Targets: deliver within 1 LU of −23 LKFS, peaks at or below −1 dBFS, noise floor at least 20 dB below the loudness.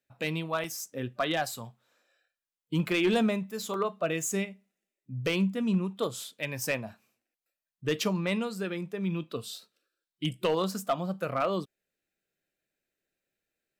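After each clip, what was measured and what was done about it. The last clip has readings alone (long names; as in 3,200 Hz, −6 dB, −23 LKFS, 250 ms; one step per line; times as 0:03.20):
share of clipped samples 0.3%; peaks flattened at −19.5 dBFS; number of dropouts 2; longest dropout 1.7 ms; integrated loudness −31.0 LKFS; sample peak −19.5 dBFS; target loudness −23.0 LKFS
→ clipped peaks rebuilt −19.5 dBFS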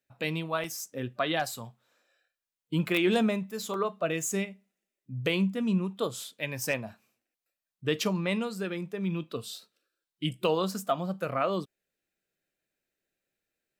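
share of clipped samples 0.0%; number of dropouts 2; longest dropout 1.7 ms
→ repair the gap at 0:00.64/0:03.74, 1.7 ms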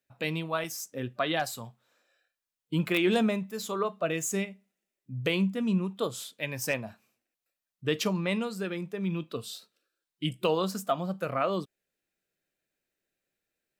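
number of dropouts 0; integrated loudness −30.5 LKFS; sample peak −11.0 dBFS; target loudness −23.0 LKFS
→ level +7.5 dB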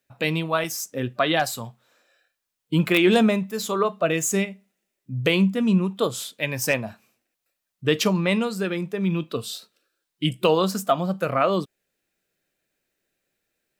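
integrated loudness −23.0 LKFS; sample peak −3.5 dBFS; background noise floor −82 dBFS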